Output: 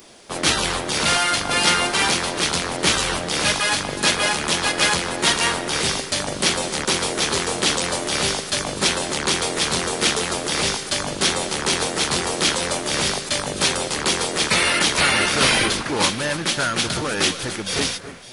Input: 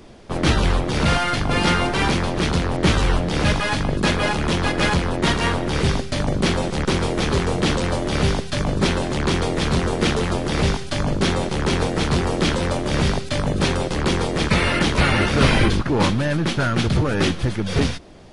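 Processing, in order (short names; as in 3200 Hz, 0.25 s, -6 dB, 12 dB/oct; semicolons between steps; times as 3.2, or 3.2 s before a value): RIAA curve recording; echo with dull and thin repeats by turns 0.279 s, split 2100 Hz, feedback 60%, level -12.5 dB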